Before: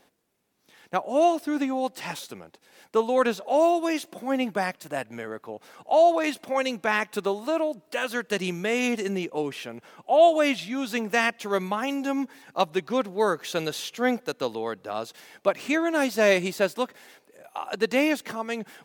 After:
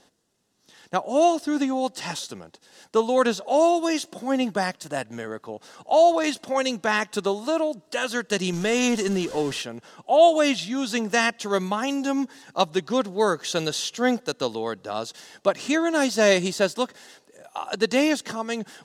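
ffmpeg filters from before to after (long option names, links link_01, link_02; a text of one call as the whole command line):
ffmpeg -i in.wav -filter_complex "[0:a]asettb=1/sr,asplit=3[link_01][link_02][link_03];[link_01]atrim=end=8.534[link_04];[link_02]atrim=start=8.53:end=9.62,asetpts=PTS-STARTPTS,afade=type=in:duration=0.004:curve=qsin,afade=type=out:start_time=1.086:duration=0.004:curve=qsin,aeval=exprs='val(0)+0.5*0.0178*sgn(val(0))':channel_layout=same[link_05];[link_03]atrim=start=9.616[link_06];[link_04][link_05]acrossfade=duration=0.004:curve1=hsin:curve2=qsin[link_07];[link_07][link_06]acrossfade=duration=0.004:curve1=qsin:curve2=hsin,lowpass=6800,bass=frequency=250:gain=3,treble=frequency=4000:gain=10,bandreject=frequency=2300:width=5.8,volume=1.5dB" out.wav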